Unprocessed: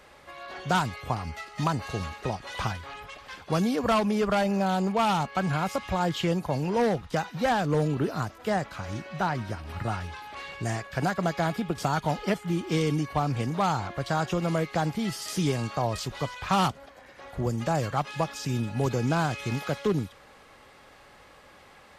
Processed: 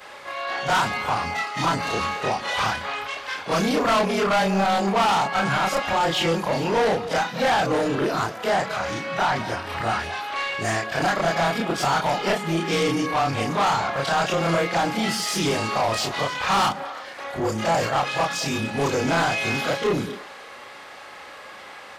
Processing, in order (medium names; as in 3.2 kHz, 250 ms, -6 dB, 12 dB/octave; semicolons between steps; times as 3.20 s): short-time spectra conjugated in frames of 72 ms; overdrive pedal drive 23 dB, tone 5.5 kHz, clips at -12 dBFS; repeats whose band climbs or falls 111 ms, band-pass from 220 Hz, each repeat 1.4 oct, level -8 dB